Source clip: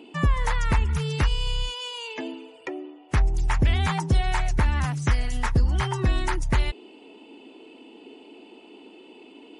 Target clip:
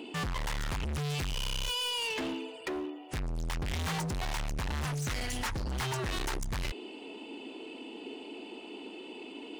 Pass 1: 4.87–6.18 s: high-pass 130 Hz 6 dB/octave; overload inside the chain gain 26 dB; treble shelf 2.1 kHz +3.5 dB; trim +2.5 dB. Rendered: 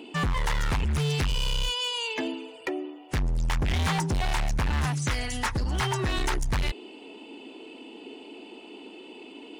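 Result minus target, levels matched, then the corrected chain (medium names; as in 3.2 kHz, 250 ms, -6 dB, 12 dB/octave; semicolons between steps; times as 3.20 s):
overload inside the chain: distortion -4 dB
4.87–6.18 s: high-pass 130 Hz 6 dB/octave; overload inside the chain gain 35 dB; treble shelf 2.1 kHz +3.5 dB; trim +2.5 dB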